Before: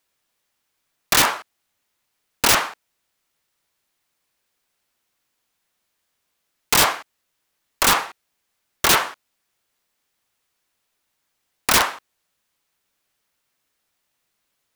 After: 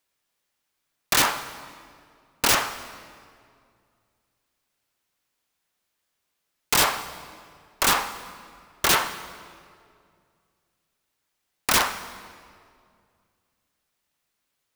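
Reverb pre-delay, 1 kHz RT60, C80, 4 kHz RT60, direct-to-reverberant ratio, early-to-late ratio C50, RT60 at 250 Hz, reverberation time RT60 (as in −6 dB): 3 ms, 2.1 s, 13.0 dB, 1.6 s, 10.5 dB, 12.5 dB, 2.5 s, 2.2 s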